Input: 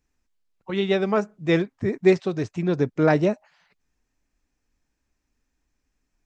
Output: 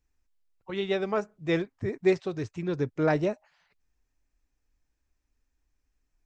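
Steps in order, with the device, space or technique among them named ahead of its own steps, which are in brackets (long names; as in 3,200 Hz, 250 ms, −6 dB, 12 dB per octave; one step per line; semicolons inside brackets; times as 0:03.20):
0:02.38–0:02.87: parametric band 680 Hz −6.5 dB 0.43 octaves
low shelf boost with a cut just above (low-shelf EQ 110 Hz +7 dB; parametric band 200 Hz −6 dB 0.81 octaves)
level −5.5 dB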